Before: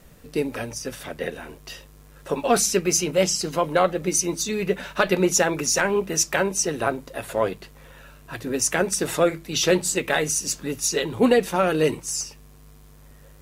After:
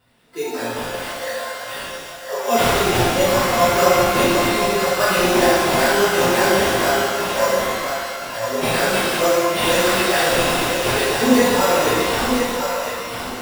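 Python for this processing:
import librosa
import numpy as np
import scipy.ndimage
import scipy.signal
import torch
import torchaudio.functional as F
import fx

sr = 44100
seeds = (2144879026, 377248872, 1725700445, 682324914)

y = x + 0.5 * 10.0 ** (-31.5 / 20.0) * np.sign(x)
y = scipy.signal.sosfilt(scipy.signal.butter(2, 220.0, 'highpass', fs=sr, output='sos'), y)
y = fx.echo_feedback(y, sr, ms=1007, feedback_pct=28, wet_db=-6)
y = fx.noise_reduce_blind(y, sr, reduce_db=23)
y = fx.sample_hold(y, sr, seeds[0], rate_hz=6400.0, jitter_pct=0)
y = fx.rev_shimmer(y, sr, seeds[1], rt60_s=1.7, semitones=12, shimmer_db=-8, drr_db=-11.5)
y = y * librosa.db_to_amplitude(-7.5)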